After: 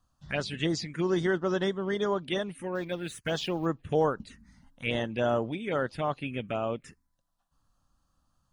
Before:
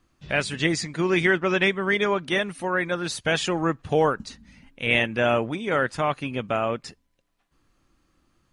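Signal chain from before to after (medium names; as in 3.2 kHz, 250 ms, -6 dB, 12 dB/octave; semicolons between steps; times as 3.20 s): 2.75–3.66 s: companding laws mixed up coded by A; touch-sensitive phaser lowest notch 370 Hz, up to 2.4 kHz, full sweep at -19 dBFS; trim -4 dB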